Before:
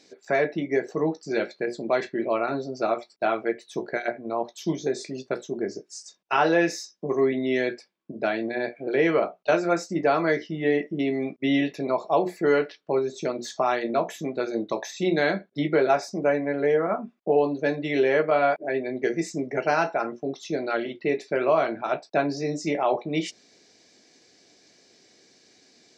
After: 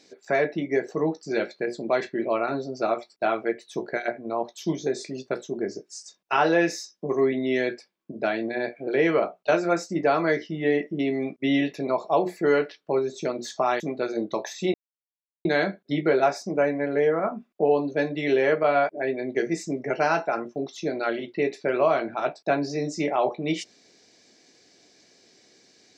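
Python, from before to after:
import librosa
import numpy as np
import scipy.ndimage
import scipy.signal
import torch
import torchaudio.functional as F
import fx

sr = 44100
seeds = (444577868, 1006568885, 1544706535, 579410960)

y = fx.edit(x, sr, fx.cut(start_s=13.8, length_s=0.38),
    fx.insert_silence(at_s=15.12, length_s=0.71), tone=tone)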